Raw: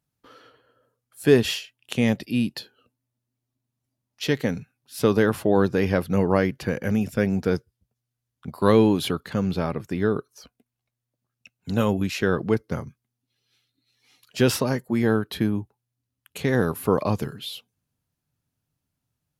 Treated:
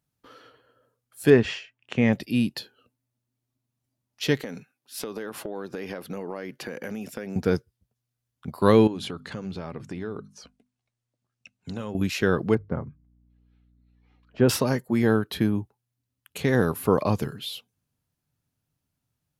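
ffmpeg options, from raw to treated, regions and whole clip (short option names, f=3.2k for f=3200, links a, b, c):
-filter_complex "[0:a]asettb=1/sr,asplit=3[a][b][c];[a]atrim=end=1.304[d];[b]atrim=start=1.3:end=2.13,asetpts=PTS-STARTPTS,afade=t=in:d=0.004:c=qsin,afade=t=out:st=0.826:d=0.004:c=qsin,lowpass=f=6.9k:w=0.5412,lowpass=f=6.9k:w=1.3066,highshelf=f=2.8k:t=q:w=1.5:g=-8[e];[c]atrim=start=2.126[f];[d][e]acrossfade=d=0.004:c1=hsin:c2=qsin[g];[g][f]acrossfade=d=0.004:c1=qsin:c2=hsin,asettb=1/sr,asplit=3[h][i][j];[h]atrim=end=4.424[k];[i]atrim=start=4.42:end=7.36,asetpts=PTS-STARTPTS,afade=t=in:d=0.004:c=qsin,afade=t=out:st=2.936:d=0.004:c=qsin,highpass=250,acompressor=threshold=-29dB:ratio=12:attack=3.2:release=140:knee=1:detection=peak[l];[j]atrim=start=7.356[m];[k][l]acrossfade=d=0.004:c1=hsin:c2=qsin[n];[n][m]acrossfade=d=0.004:c1=qsin:c2=hsin,asettb=1/sr,asplit=3[o][p][q];[o]atrim=end=8.874[r];[p]atrim=start=8.87:end=11.95,asetpts=PTS-STARTPTS,afade=t=in:d=0.004:c=qsin,afade=t=out:st=3.076:d=0.004:c=qsin,lowpass=f=9.3k:w=0.5412,lowpass=f=9.3k:w=1.3066,bandreject=f=50:t=h:w=6,bandreject=f=100:t=h:w=6,bandreject=f=150:t=h:w=6,bandreject=f=200:t=h:w=6,bandreject=f=250:t=h:w=6,acompressor=threshold=-32dB:ratio=3:attack=3.2:release=140:knee=1:detection=peak[s];[q]atrim=start=11.946[t];[r][s]acrossfade=d=0.004:c1=hsin:c2=qsin[u];[u][t]acrossfade=d=0.004:c1=qsin:c2=hsin,asettb=1/sr,asplit=3[v][w][x];[v]atrim=end=12.554[y];[w]atrim=start=12.55:end=14.49,asetpts=PTS-STARTPTS,afade=t=in:d=0.004:c=qsin,afade=t=out:st=1.936:d=0.004:c=qsin,lowpass=1.3k,bandreject=f=50:t=h:w=6,bandreject=f=100:t=h:w=6,bandreject=f=150:t=h:w=6,aeval=exprs='val(0)+0.001*(sin(2*PI*60*n/s)+sin(2*PI*2*60*n/s)/2+sin(2*PI*3*60*n/s)/3+sin(2*PI*4*60*n/s)/4+sin(2*PI*5*60*n/s)/5)':c=same[z];[x]atrim=start=14.486[aa];[y][z]acrossfade=d=0.004:c1=hsin:c2=qsin[ab];[ab][aa]acrossfade=d=0.004:c1=qsin:c2=hsin"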